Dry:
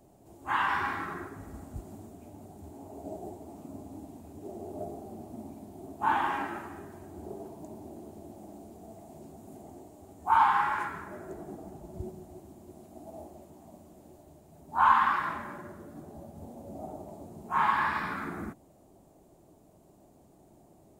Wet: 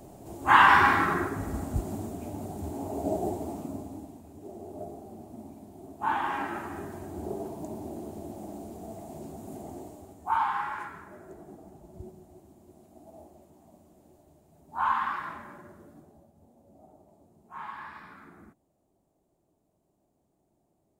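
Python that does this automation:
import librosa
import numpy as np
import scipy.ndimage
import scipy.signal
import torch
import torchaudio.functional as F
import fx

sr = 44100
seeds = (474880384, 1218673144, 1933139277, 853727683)

y = fx.gain(x, sr, db=fx.line((3.45, 11.0), (4.23, -1.5), (6.21, -1.5), (6.82, 6.5), (9.89, 6.5), (10.41, -5.0), (15.88, -5.0), (16.34, -14.5)))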